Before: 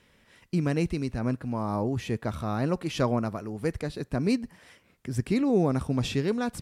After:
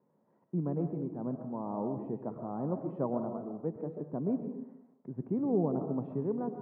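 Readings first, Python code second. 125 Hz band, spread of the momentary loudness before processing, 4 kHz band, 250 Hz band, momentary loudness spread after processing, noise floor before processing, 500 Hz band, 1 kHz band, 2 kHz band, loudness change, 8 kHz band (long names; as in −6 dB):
−9.0 dB, 8 LU, below −40 dB, −6.0 dB, 10 LU, −63 dBFS, −5.5 dB, −7.0 dB, below −25 dB, −6.5 dB, below −35 dB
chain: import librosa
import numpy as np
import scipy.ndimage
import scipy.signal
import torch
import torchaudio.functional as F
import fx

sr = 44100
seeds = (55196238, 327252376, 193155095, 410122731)

y = scipy.signal.sosfilt(scipy.signal.cheby1(3, 1.0, [150.0, 950.0], 'bandpass', fs=sr, output='sos'), x)
y = fx.rev_freeverb(y, sr, rt60_s=0.78, hf_ratio=0.45, predelay_ms=85, drr_db=6.5)
y = F.gain(torch.from_numpy(y), -6.0).numpy()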